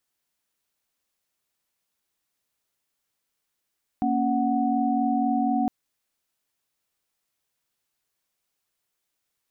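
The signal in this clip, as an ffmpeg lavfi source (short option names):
-f lavfi -i "aevalsrc='0.0562*(sin(2*PI*233.08*t)+sin(2*PI*277.18*t)+sin(2*PI*739.99*t))':d=1.66:s=44100"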